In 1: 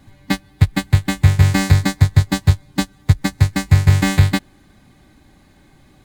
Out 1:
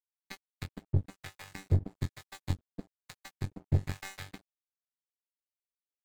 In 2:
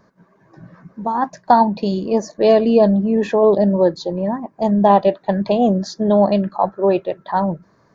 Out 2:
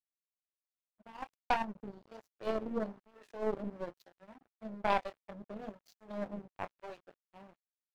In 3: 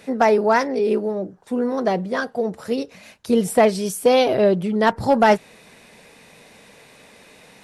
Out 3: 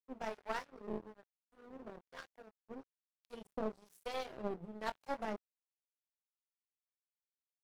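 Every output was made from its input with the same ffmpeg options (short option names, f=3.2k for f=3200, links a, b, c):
-filter_complex "[0:a]bandreject=f=60:t=h:w=6,bandreject=f=120:t=h:w=6,bandreject=f=180:t=h:w=6,bandreject=f=240:t=h:w=6,bandreject=f=300:t=h:w=6,bandreject=f=360:t=h:w=6,bandreject=f=420:t=h:w=6,flanger=delay=5.9:depth=9:regen=90:speed=1.3:shape=sinusoidal,aeval=exprs='0.596*(cos(1*acos(clip(val(0)/0.596,-1,1)))-cos(1*PI/2))+0.0841*(cos(3*acos(clip(val(0)/0.596,-1,1)))-cos(3*PI/2))':c=same,highpass=f=77:w=0.5412,highpass=f=77:w=1.3066,acrossover=split=530[a][b];[a]aeval=exprs='val(0)*(1-1/2+1/2*cos(2*PI*1.1*n/s))':c=same[c];[b]aeval=exprs='val(0)*(1-1/2-1/2*cos(2*PI*1.1*n/s))':c=same[d];[c][d]amix=inputs=2:normalize=0,asplit=2[e][f];[f]adelay=23,volume=-6.5dB[g];[e][g]amix=inputs=2:normalize=0,aeval=exprs='sgn(val(0))*max(abs(val(0))-0.0133,0)':c=same,aeval=exprs='0.376*(cos(1*acos(clip(val(0)/0.376,-1,1)))-cos(1*PI/2))+0.0376*(cos(6*acos(clip(val(0)/0.376,-1,1)))-cos(6*PI/2))+0.0266*(cos(7*acos(clip(val(0)/0.376,-1,1)))-cos(7*PI/2))':c=same,volume=-6.5dB"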